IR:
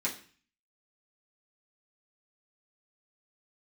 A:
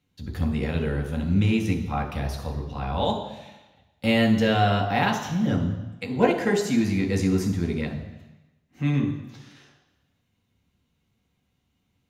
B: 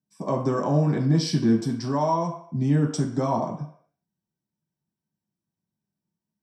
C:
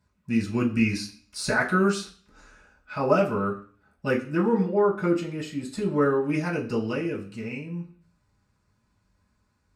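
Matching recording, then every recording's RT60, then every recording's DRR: C; 1.1 s, 0.60 s, 0.40 s; 1.0 dB, -2.0 dB, -6.5 dB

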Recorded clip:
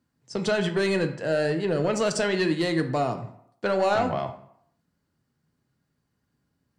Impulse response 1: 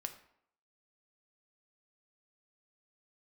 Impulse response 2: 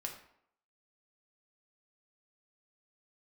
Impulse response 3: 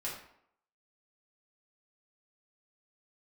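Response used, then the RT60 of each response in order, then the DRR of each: 1; 0.70 s, 0.70 s, 0.70 s; 6.0 dB, 1.0 dB, -6.5 dB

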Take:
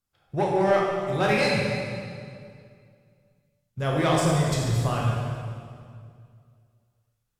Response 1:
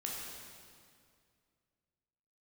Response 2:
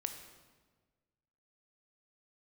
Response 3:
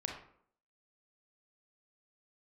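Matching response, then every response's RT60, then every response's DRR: 1; 2.2 s, 1.4 s, 0.60 s; -3.5 dB, 6.0 dB, 0.5 dB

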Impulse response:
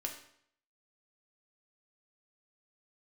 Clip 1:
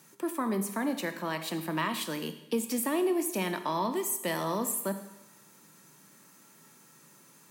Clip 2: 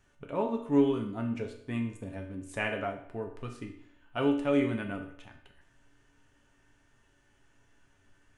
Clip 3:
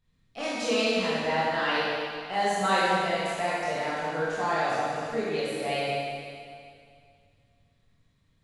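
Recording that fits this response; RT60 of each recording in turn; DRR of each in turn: 2; 0.95 s, 0.65 s, 2.2 s; 8.0 dB, 1.0 dB, -9.5 dB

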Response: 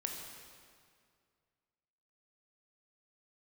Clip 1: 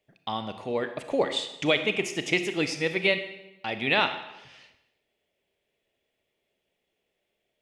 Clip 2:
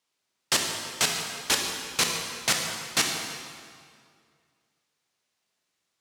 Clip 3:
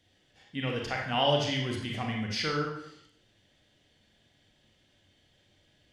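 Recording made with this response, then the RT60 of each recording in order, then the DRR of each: 2; 0.95 s, 2.1 s, 0.65 s; 8.5 dB, 1.0 dB, -1.0 dB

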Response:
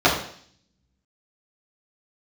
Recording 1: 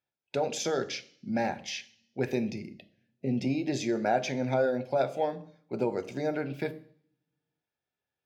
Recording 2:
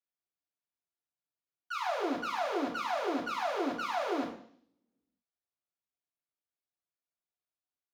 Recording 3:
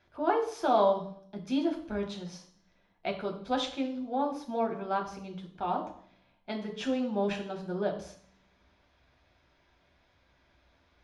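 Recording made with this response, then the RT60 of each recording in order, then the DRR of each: 2; 0.55 s, 0.55 s, 0.55 s; 10.5 dB, -9.0 dB, 1.0 dB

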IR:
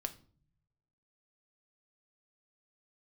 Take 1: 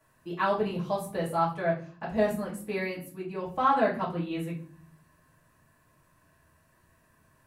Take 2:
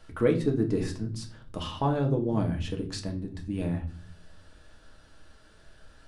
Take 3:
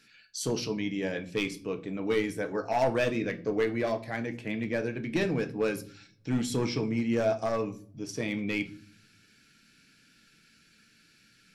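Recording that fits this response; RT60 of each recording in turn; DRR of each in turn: 3; 0.45 s, 0.45 s, 0.45 s; -7.5 dB, 2.0 dB, 7.0 dB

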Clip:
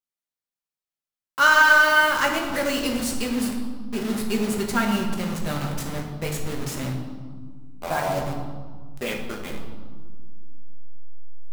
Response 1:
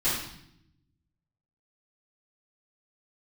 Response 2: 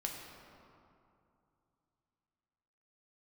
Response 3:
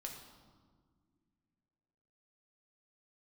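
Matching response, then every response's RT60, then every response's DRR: 3; 0.75 s, 2.6 s, no single decay rate; -13.0 dB, 0.0 dB, 1.0 dB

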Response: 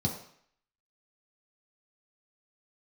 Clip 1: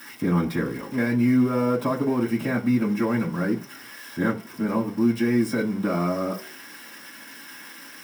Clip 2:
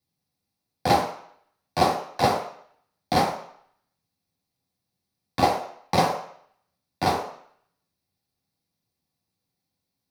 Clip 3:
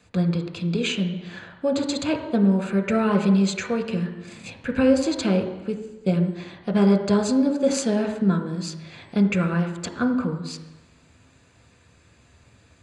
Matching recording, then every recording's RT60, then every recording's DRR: 2; no single decay rate, 0.60 s, 1.1 s; -8.0 dB, -2.0 dB, 4.5 dB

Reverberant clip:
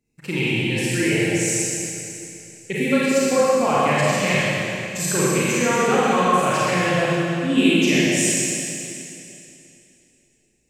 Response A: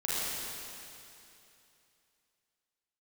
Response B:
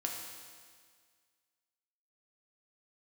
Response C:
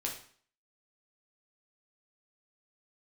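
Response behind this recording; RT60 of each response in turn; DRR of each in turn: A; 2.8 s, 1.8 s, 0.50 s; -9.5 dB, -0.5 dB, -1.5 dB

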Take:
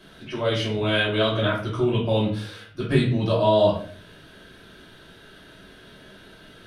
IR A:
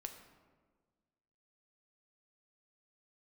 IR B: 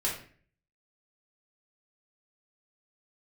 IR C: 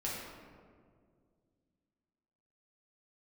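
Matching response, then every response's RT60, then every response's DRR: B; 1.5 s, 0.45 s, 2.0 s; 4.5 dB, -5.5 dB, -6.5 dB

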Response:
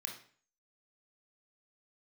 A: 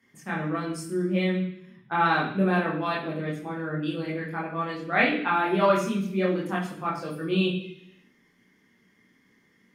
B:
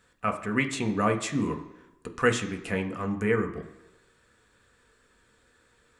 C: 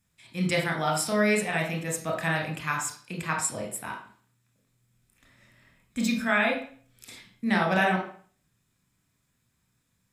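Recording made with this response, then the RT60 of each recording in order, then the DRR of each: C; 0.70 s, 1.0 s, 0.45 s; -5.0 dB, 4.0 dB, 0.5 dB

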